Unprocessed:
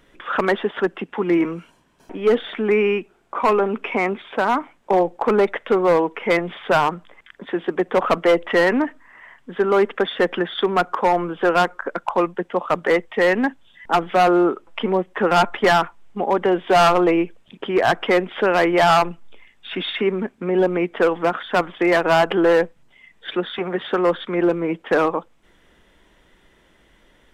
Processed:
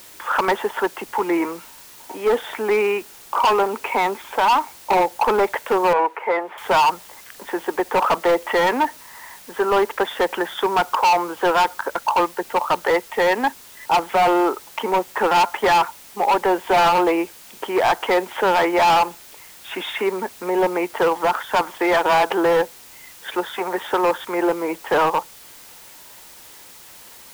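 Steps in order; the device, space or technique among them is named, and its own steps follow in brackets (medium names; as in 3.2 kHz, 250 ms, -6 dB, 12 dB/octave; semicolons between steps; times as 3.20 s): drive-through speaker (band-pass 410–2800 Hz; peaking EQ 900 Hz +12 dB 0.3 oct; hard clipper -15 dBFS, distortion -7 dB; white noise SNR 23 dB); 5.93–6.58 s: three-band isolator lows -20 dB, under 310 Hz, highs -19 dB, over 2.4 kHz; trim +2 dB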